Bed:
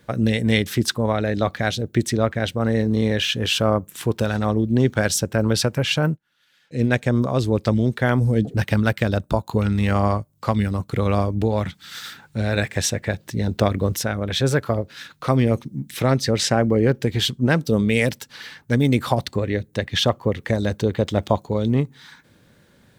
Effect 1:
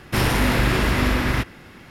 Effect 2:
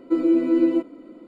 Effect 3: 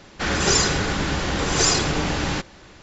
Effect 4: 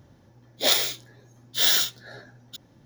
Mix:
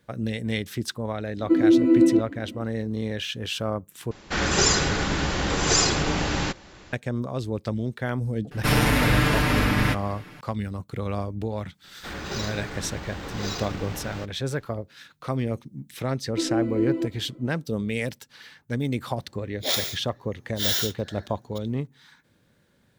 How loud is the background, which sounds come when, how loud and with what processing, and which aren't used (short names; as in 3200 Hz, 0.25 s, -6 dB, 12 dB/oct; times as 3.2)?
bed -9 dB
1.39 add 2 -2.5 dB + small resonant body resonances 210/1900/2700 Hz, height 11 dB, ringing for 30 ms
4.11 replace with 3 -1.5 dB
8.51 add 1 -3.5 dB + comb 6.7 ms, depth 99%
11.84 add 3 -12 dB + decimation joined by straight lines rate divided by 4×
16.26 add 2 -6.5 dB
19.02 add 4 -4.5 dB